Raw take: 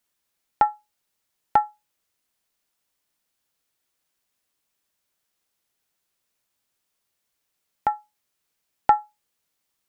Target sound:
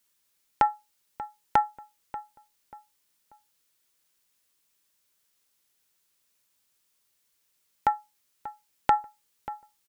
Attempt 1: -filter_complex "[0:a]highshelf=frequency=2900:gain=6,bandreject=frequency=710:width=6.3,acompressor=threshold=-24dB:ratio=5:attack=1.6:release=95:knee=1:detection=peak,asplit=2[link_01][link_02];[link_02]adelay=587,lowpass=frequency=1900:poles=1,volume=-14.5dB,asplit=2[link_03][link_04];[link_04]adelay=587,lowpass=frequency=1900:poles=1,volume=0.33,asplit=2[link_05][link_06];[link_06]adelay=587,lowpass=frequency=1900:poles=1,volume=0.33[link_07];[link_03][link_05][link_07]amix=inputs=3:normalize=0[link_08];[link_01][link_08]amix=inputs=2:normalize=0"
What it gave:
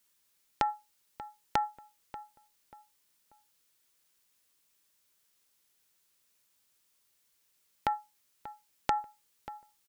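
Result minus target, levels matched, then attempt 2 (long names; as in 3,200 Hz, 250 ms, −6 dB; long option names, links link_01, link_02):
downward compressor: peak gain reduction +8 dB
-filter_complex "[0:a]highshelf=frequency=2900:gain=6,bandreject=frequency=710:width=6.3,acompressor=threshold=-14dB:ratio=5:attack=1.6:release=95:knee=1:detection=peak,asplit=2[link_01][link_02];[link_02]adelay=587,lowpass=frequency=1900:poles=1,volume=-14.5dB,asplit=2[link_03][link_04];[link_04]adelay=587,lowpass=frequency=1900:poles=1,volume=0.33,asplit=2[link_05][link_06];[link_06]adelay=587,lowpass=frequency=1900:poles=1,volume=0.33[link_07];[link_03][link_05][link_07]amix=inputs=3:normalize=0[link_08];[link_01][link_08]amix=inputs=2:normalize=0"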